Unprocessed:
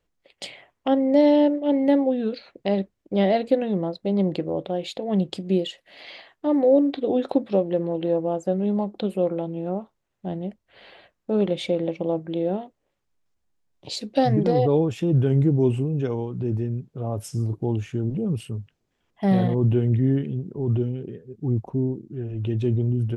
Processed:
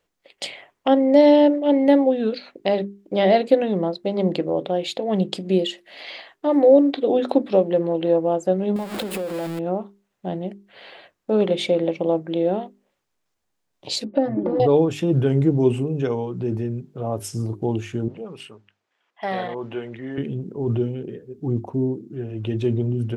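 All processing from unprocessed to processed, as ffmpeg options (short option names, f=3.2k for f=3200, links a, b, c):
-filter_complex "[0:a]asettb=1/sr,asplit=3[a][b][c];[a]atrim=end=8.764[d];[b]atrim=start=8.76:end=9.59,asetpts=PTS-STARTPTS,afade=t=in:d=0.004:c=qsin,afade=t=out:st=0.826:d=0.004:c=qsin,aeval=exprs='val(0)+0.5*0.0447*sgn(val(0))':c=same,equalizer=f=6k:t=o:w=0.25:g=-8.5,acompressor=threshold=-27dB:ratio=10:attack=3.2:release=140:knee=1:detection=peak[e];[c]atrim=start=9.586[f];[d][e]acrossfade=d=0.004:c1=hsin:c2=qsin[g];[g][f]acrossfade=d=0.004:c1=qsin:c2=hsin,asettb=1/sr,asplit=3[h][i][j];[h]atrim=end=14.044[k];[i]atrim=start=14.04:end=14.6,asetpts=PTS-STARTPTS,afade=t=in:d=0.004:c=qsin,afade=t=out:st=0.556:d=0.004:c=qsin,lowpass=1.1k,acompressor=threshold=-22dB:ratio=6:attack=3.2:release=140:knee=1:detection=peak,aecho=1:1:3.4:0.99,atrim=end_sample=24696[l];[j]atrim=start=14.596[m];[k][l]acrossfade=d=0.004:c1=hsin:c2=qsin[n];[n][m]acrossfade=d=0.004:c1=qsin:c2=hsin,asettb=1/sr,asplit=3[o][p][q];[o]atrim=end=18.084[r];[p]atrim=start=18.08:end=20.18,asetpts=PTS-STARTPTS,afade=t=in:d=0.004:c=qsin,afade=t=out:st=2.096:d=0.004:c=qsin,bandpass=f=1k:t=q:w=0.63,tiltshelf=f=940:g=-6[s];[q]atrim=start=20.176[t];[r][s]acrossfade=d=0.004:c1=hsin:c2=qsin[u];[u][t]acrossfade=d=0.004:c1=qsin:c2=hsin,lowshelf=f=140:g=-11.5,bandreject=f=50:t=h:w=6,bandreject=f=100:t=h:w=6,bandreject=f=150:t=h:w=6,bandreject=f=200:t=h:w=6,bandreject=f=250:t=h:w=6,bandreject=f=300:t=h:w=6,bandreject=f=350:t=h:w=6,bandreject=f=400:t=h:w=6,volume=5.5dB"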